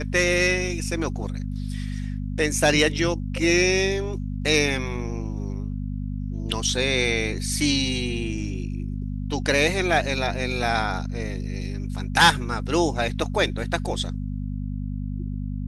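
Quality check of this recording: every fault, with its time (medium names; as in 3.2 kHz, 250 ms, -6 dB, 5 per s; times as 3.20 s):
hum 50 Hz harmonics 5 -29 dBFS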